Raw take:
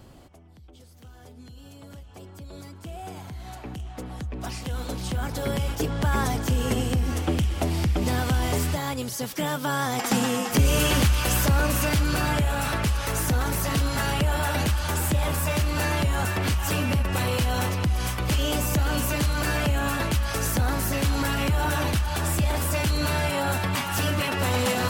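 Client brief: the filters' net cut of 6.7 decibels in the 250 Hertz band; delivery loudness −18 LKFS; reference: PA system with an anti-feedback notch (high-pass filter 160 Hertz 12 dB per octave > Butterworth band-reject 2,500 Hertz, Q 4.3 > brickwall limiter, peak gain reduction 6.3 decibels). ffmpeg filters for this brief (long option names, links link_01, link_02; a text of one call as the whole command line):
ffmpeg -i in.wav -af "highpass=160,asuperstop=centerf=2500:order=8:qfactor=4.3,equalizer=frequency=250:width_type=o:gain=-7.5,volume=11.5dB,alimiter=limit=-7.5dB:level=0:latency=1" out.wav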